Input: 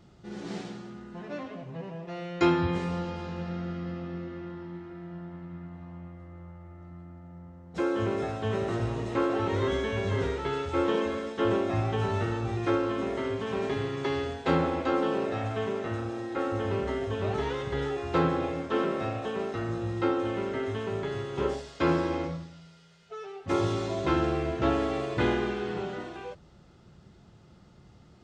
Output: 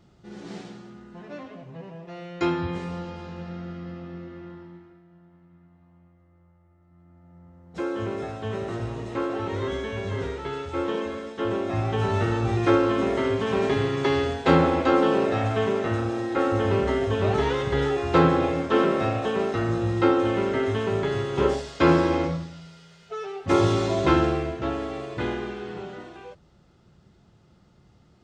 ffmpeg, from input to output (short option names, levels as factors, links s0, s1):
-af "volume=8.91,afade=t=out:st=4.52:d=0.51:silence=0.251189,afade=t=in:st=6.87:d=0.88:silence=0.237137,afade=t=in:st=11.52:d=1:silence=0.398107,afade=t=out:st=24.08:d=0.53:silence=0.334965"